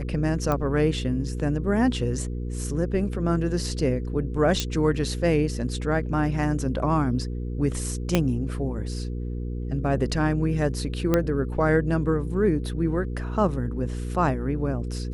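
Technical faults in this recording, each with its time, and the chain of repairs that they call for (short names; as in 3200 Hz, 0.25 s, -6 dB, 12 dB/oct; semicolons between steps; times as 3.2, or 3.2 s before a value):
hum 60 Hz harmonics 8 -30 dBFS
0.52 pop -13 dBFS
4.6 pop -9 dBFS
8.15 pop -6 dBFS
11.14 pop -8 dBFS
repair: de-click; de-hum 60 Hz, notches 8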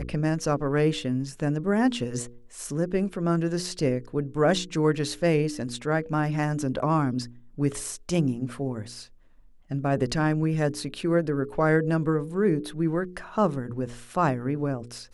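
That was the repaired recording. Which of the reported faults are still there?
8.15 pop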